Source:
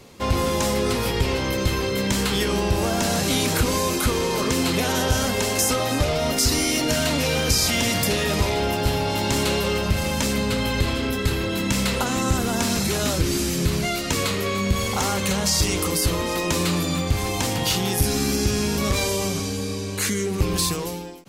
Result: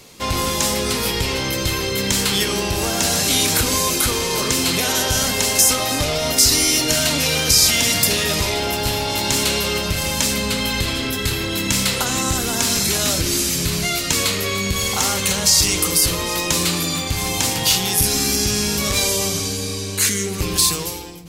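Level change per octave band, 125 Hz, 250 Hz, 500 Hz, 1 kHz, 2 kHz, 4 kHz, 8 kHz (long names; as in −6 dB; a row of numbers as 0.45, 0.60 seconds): −1.0, −1.0, −0.5, +1.5, +4.0, +7.0, +8.5 decibels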